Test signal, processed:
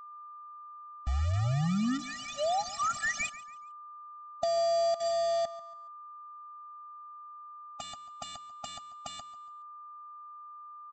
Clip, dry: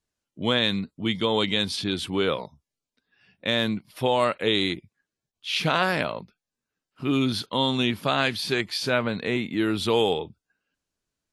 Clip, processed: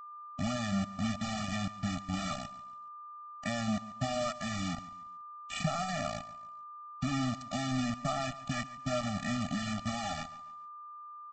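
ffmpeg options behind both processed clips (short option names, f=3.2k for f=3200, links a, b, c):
-filter_complex "[0:a]lowpass=1.9k,afftfilt=real='re*gte(hypot(re,im),0.00447)':imag='im*gte(hypot(re,im),0.00447)':win_size=1024:overlap=0.75,highpass=f=570:p=1,aemphasis=mode=reproduction:type=riaa,acompressor=threshold=-31dB:ratio=8,aresample=16000,acrusher=bits=5:mix=0:aa=0.000001,aresample=44100,aeval=exprs='val(0)+0.00398*sin(2*PI*1200*n/s)':c=same,asplit=2[a][b];[b]aecho=0:1:141|282|423:0.141|0.0494|0.0173[c];[a][c]amix=inputs=2:normalize=0,afftfilt=real='re*eq(mod(floor(b*sr/1024/280),2),0)':imag='im*eq(mod(floor(b*sr/1024/280),2),0)':win_size=1024:overlap=0.75,volume=3.5dB"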